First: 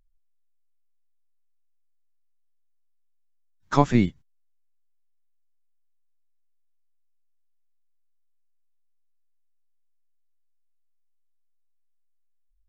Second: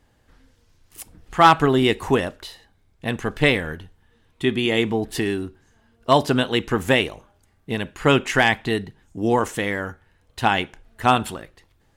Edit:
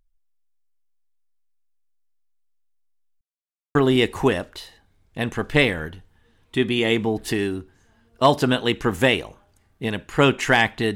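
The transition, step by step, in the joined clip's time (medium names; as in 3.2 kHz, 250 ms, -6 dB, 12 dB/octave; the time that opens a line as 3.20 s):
first
3.21–3.75 s: mute
3.75 s: go over to second from 1.62 s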